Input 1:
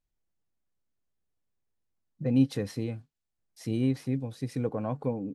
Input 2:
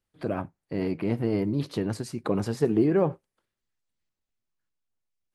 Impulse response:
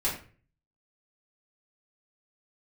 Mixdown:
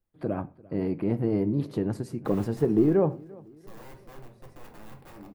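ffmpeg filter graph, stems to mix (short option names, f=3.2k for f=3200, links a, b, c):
-filter_complex "[0:a]aeval=exprs='(mod(26.6*val(0)+1,2)-1)/26.6':c=same,volume=-15.5dB,asplit=3[a][b][c];[b]volume=-6.5dB[d];[c]volume=-16.5dB[e];[1:a]volume=0.5dB,asplit=3[f][g][h];[g]volume=-22.5dB[i];[h]volume=-23dB[j];[2:a]atrim=start_sample=2205[k];[d][i]amix=inputs=2:normalize=0[l];[l][k]afir=irnorm=-1:irlink=0[m];[e][j]amix=inputs=2:normalize=0,aecho=0:1:344|688|1032|1376|1720|2064|2408:1|0.48|0.23|0.111|0.0531|0.0255|0.0122[n];[a][f][m][n]amix=inputs=4:normalize=0,equalizer=f=4.7k:w=0.31:g=-11.5"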